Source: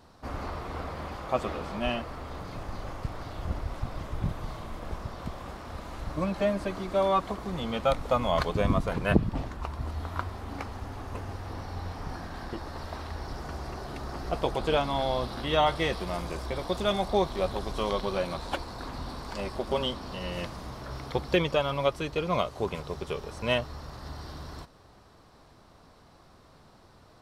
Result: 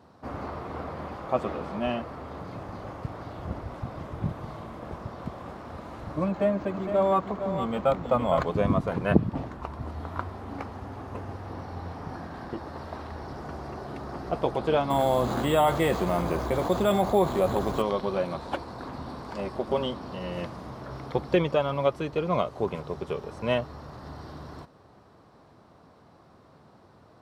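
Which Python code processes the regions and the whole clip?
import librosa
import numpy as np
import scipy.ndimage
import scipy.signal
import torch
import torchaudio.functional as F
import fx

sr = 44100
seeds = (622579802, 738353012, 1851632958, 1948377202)

y = fx.chain(x, sr, fx.echo_single(ms=460, db=-8.5),
    fx.resample_linear(factor=4), at=(6.28, 8.48))
y = fx.chain(y, sr, fx.resample_bad(factor=4, down='filtered', up='hold'),
    fx.env_flatten(amount_pct=50), at=(14.9, 17.82))
y = scipy.signal.sosfilt(scipy.signal.butter(2, 100.0, 'highpass', fs=sr, output='sos'), y)
y = fx.high_shelf(y, sr, hz=2100.0, db=-11.5)
y = y * 10.0 ** (3.0 / 20.0)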